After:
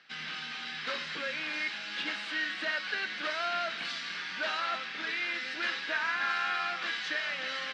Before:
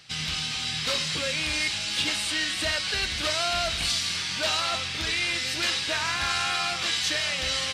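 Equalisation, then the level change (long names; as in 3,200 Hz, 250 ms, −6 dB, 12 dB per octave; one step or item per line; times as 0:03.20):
Butterworth high-pass 190 Hz 36 dB per octave
high-frequency loss of the air 200 metres
parametric band 1,600 Hz +10 dB 0.74 octaves
−7.0 dB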